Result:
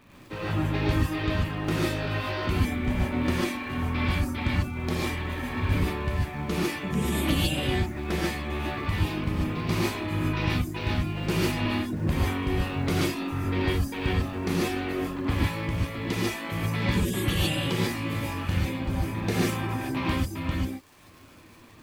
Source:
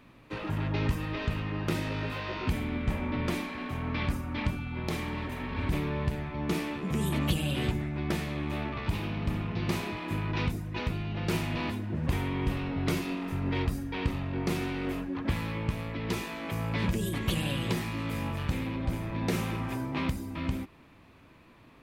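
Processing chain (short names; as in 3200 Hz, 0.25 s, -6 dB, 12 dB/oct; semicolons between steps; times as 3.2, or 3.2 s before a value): reverb removal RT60 0.73 s; crackle 100/s -45 dBFS; non-linear reverb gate 0.17 s rising, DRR -5.5 dB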